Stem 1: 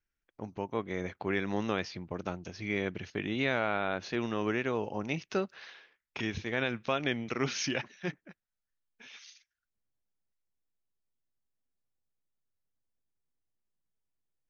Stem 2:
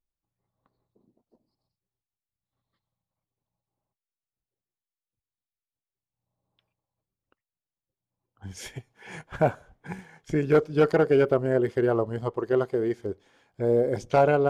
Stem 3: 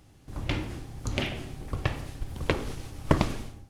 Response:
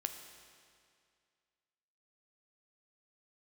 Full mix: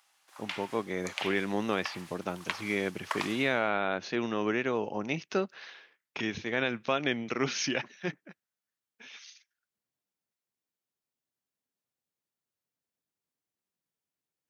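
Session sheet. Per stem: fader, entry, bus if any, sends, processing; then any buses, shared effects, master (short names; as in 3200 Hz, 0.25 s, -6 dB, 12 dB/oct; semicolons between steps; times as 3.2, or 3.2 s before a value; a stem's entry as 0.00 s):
+2.0 dB, 0.00 s, no send, dry
off
-2.0 dB, 0.00 s, no send, HPF 890 Hz 24 dB/oct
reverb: off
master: HPF 150 Hz 12 dB/oct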